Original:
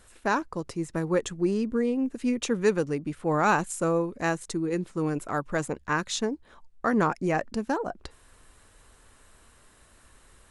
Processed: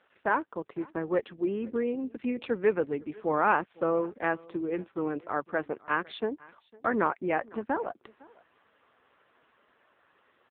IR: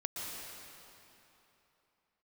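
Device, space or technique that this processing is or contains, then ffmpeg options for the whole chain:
satellite phone: -af "highpass=300,lowpass=3300,aecho=1:1:505:0.0668" -ar 8000 -c:a libopencore_amrnb -b:a 5900

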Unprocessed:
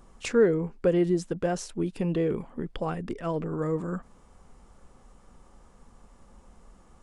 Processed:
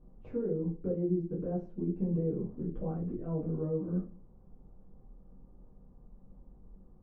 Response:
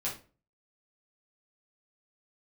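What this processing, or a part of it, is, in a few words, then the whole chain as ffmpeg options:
television next door: -filter_complex "[0:a]acompressor=threshold=-27dB:ratio=3,lowpass=420[link_01];[1:a]atrim=start_sample=2205[link_02];[link_01][link_02]afir=irnorm=-1:irlink=0,volume=-4.5dB"

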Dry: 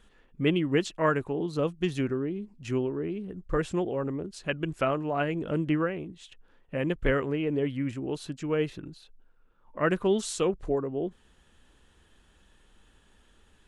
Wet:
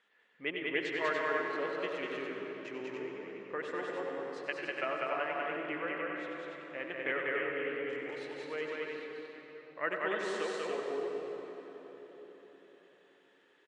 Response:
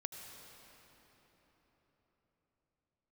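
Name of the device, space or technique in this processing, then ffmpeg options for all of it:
station announcement: -filter_complex "[0:a]highpass=490,lowpass=4600,equalizer=frequency=2000:width_type=o:width=0.48:gain=9,aecho=1:1:93.29|195.3|288.6:0.316|0.794|0.562[link_01];[1:a]atrim=start_sample=2205[link_02];[link_01][link_02]afir=irnorm=-1:irlink=0,volume=-5.5dB"

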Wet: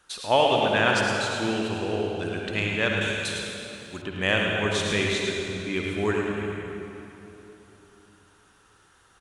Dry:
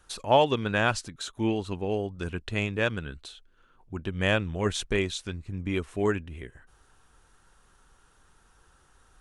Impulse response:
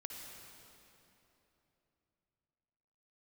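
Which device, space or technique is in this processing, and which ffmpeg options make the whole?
PA in a hall: -filter_complex "[0:a]highpass=frequency=160:poles=1,equalizer=frequency=2800:width_type=o:width=2.3:gain=4,aecho=1:1:107:0.447[link_01];[1:a]atrim=start_sample=2205[link_02];[link_01][link_02]afir=irnorm=-1:irlink=0,asettb=1/sr,asplit=3[link_03][link_04][link_05];[link_03]atrim=end=3.014[link_06];[link_04]atrim=start=3.01:end=4.02,asetpts=PTS-STARTPTS,afade=type=in:duration=0.004:curve=qsin,afade=type=out:start_time=1.006:duration=0.004:curve=qsin,bass=frequency=250:gain=-2,treble=frequency=4000:gain=15[link_07];[link_05]atrim=start=4.016[link_08];[link_06][link_07]acrossfade=duration=0.004:curve1=hsin:curve2=qsin[link_09];[link_09][link_08]acrossfade=duration=0.004:curve1=qsin:curve2=hsin,volume=4.5dB"

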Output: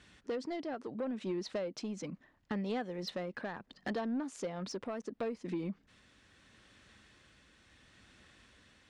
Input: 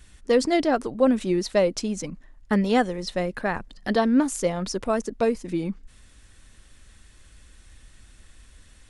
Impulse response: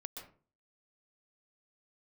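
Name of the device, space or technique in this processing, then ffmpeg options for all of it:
AM radio: -af "highpass=140,lowpass=4400,acompressor=threshold=-30dB:ratio=8,asoftclip=type=tanh:threshold=-27dB,tremolo=f=0.73:d=0.28,volume=-1.5dB"

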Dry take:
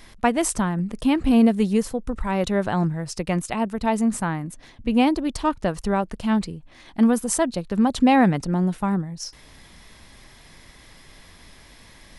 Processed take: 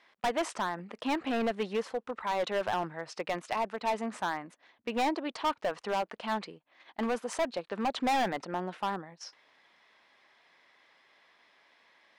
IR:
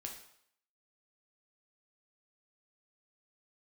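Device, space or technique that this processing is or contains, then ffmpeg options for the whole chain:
walkie-talkie: -af "highpass=580,lowpass=3000,asoftclip=type=hard:threshold=-25dB,agate=range=-10dB:threshold=-49dB:ratio=16:detection=peak"

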